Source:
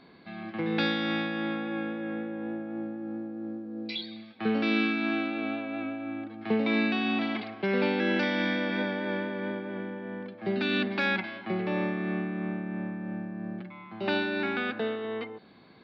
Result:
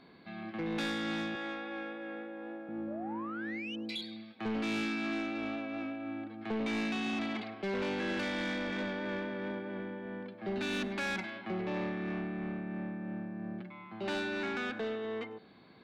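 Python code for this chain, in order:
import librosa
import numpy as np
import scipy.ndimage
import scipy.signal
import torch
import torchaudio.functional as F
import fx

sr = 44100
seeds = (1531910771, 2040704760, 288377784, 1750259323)

p1 = fx.highpass(x, sr, hz=420.0, slope=12, at=(1.35, 2.69))
p2 = fx.spec_paint(p1, sr, seeds[0], shape='rise', start_s=2.87, length_s=0.89, low_hz=540.0, high_hz=3100.0, level_db=-39.0)
p3 = 10.0 ** (-27.5 / 20.0) * np.tanh(p2 / 10.0 ** (-27.5 / 20.0))
p4 = p3 + fx.echo_single(p3, sr, ms=100, db=-20.5, dry=0)
y = p4 * 10.0 ** (-3.0 / 20.0)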